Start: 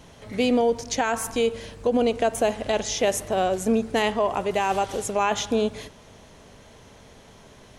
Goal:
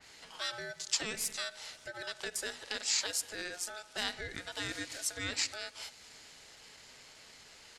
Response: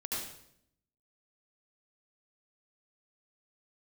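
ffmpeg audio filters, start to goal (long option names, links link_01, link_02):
-af "acompressor=threshold=-43dB:ratio=1.5,bandpass=frequency=4700:width_type=q:width=0.68:csg=0,aeval=exprs='val(0)*sin(2*PI*1100*n/s)':channel_layout=same,asetrate=42845,aresample=44100,atempo=1.0293,adynamicequalizer=threshold=0.002:dfrequency=3100:dqfactor=0.7:tfrequency=3100:tqfactor=0.7:attack=5:release=100:ratio=0.375:range=2:mode=boostabove:tftype=highshelf,volume=5.5dB"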